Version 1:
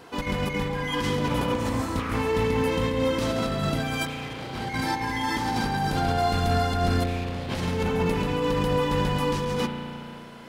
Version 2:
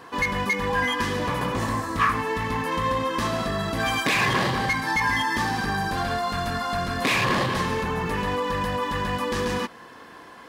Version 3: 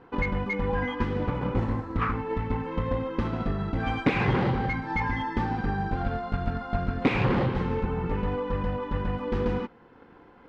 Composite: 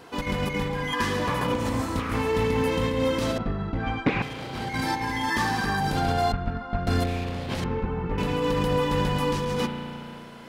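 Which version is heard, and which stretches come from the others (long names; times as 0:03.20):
1
0:00.93–0:01.47: punch in from 2
0:03.38–0:04.22: punch in from 3
0:05.30–0:05.80: punch in from 2
0:06.32–0:06.87: punch in from 3
0:07.64–0:08.18: punch in from 3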